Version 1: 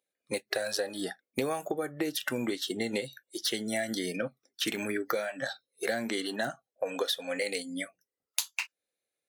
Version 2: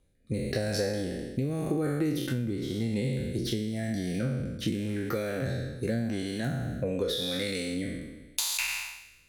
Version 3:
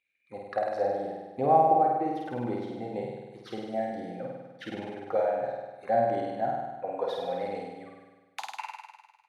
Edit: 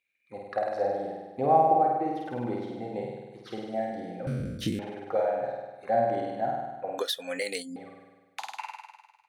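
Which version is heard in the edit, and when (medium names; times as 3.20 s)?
3
4.27–4.79 s: from 2
6.98–7.76 s: from 1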